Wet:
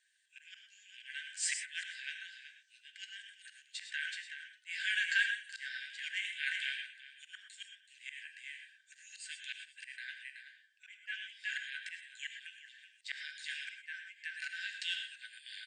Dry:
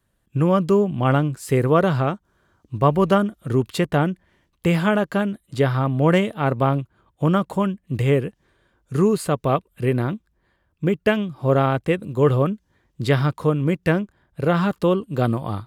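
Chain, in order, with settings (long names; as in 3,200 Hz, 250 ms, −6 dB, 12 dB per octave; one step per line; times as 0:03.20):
flanger 0.65 Hz, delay 8 ms, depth 7.5 ms, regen +51%
brick-wall band-pass 1,500–9,100 Hz
on a send: single-tap delay 377 ms −17 dB
on the sum: volume swells 450 ms
reverb whose tail is shaped and stops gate 140 ms rising, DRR 6 dB
level +7.5 dB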